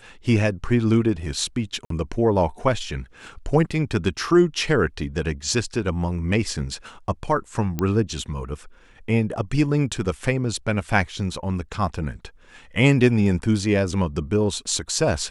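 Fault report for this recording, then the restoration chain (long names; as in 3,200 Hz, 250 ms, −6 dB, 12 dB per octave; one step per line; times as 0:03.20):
0:01.85–0:01.90: drop-out 53 ms
0:07.79: click −11 dBFS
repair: click removal
repair the gap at 0:01.85, 53 ms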